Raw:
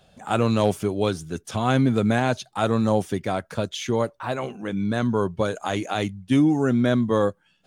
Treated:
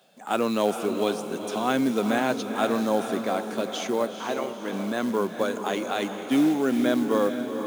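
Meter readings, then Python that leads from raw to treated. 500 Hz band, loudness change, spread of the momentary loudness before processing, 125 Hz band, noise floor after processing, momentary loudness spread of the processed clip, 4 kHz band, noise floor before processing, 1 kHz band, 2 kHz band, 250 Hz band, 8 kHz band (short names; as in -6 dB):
-1.0 dB, -2.5 dB, 8 LU, -15.0 dB, -38 dBFS, 7 LU, -1.0 dB, -64 dBFS, -1.0 dB, -1.0 dB, -2.5 dB, 0.0 dB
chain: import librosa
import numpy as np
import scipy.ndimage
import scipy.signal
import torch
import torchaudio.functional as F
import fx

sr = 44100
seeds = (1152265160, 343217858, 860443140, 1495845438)

y = fx.quant_companded(x, sr, bits=6)
y = scipy.signal.sosfilt(scipy.signal.butter(4, 210.0, 'highpass', fs=sr, output='sos'), y)
y = fx.echo_diffused(y, sr, ms=456, feedback_pct=50, wet_db=-7.5)
y = F.gain(torch.from_numpy(y), -2.0).numpy()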